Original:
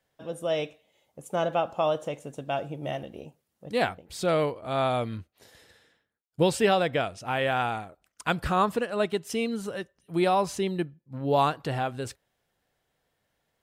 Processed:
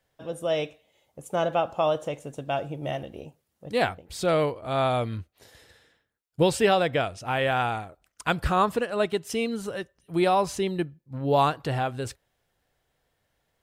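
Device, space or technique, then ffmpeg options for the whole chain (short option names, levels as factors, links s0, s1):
low shelf boost with a cut just above: -af "lowshelf=f=95:g=7,equalizer=f=200:t=o:w=0.77:g=-3,volume=1.19"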